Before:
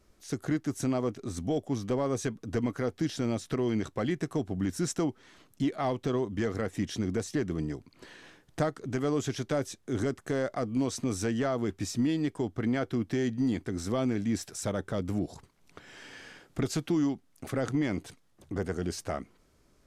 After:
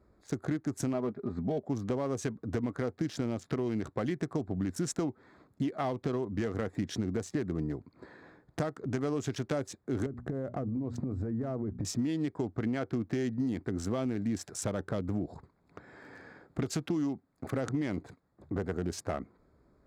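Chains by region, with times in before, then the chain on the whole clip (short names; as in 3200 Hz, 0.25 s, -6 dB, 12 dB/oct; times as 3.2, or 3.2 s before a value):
0.93–1.66 LPF 3000 Hz + comb 4.9 ms, depth 48%
10.06–11.85 tilt -3.5 dB/oct + notches 60/120/180/240 Hz + compressor 12:1, threshold -31 dBFS
whole clip: Wiener smoothing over 15 samples; HPF 41 Hz; compressor, threshold -30 dBFS; gain +2 dB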